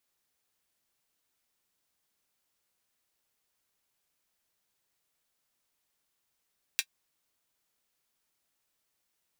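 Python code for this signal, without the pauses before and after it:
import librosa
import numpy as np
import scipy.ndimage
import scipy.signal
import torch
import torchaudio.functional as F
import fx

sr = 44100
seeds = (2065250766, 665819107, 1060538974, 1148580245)

y = fx.drum_hat(sr, length_s=0.24, from_hz=2300.0, decay_s=0.07)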